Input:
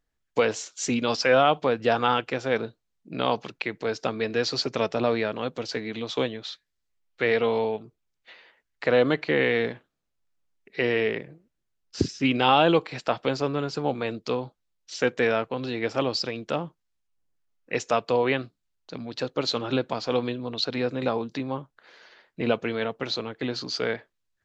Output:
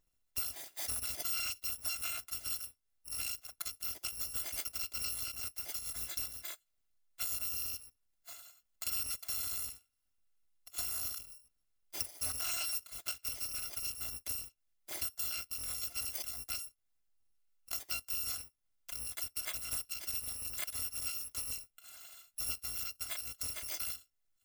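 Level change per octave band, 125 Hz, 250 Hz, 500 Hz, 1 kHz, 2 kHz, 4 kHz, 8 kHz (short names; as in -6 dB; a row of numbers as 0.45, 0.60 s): -22.0 dB, -34.0 dB, -36.0 dB, -25.5 dB, -18.0 dB, -10.0 dB, n/a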